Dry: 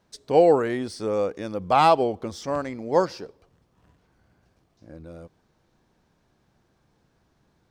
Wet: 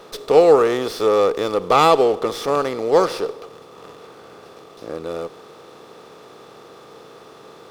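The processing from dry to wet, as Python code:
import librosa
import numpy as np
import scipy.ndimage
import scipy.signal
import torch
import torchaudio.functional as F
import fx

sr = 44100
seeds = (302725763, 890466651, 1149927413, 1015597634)

y = fx.bin_compress(x, sr, power=0.6)
y = scipy.signal.sosfilt(scipy.signal.butter(2, 100.0, 'highpass', fs=sr, output='sos'), y)
y = fx.high_shelf(y, sr, hz=2100.0, db=9.5)
y = fx.small_body(y, sr, hz=(430.0, 1200.0, 3500.0), ring_ms=25, db=10)
y = fx.running_max(y, sr, window=3)
y = y * 10.0 ** (-3.0 / 20.0)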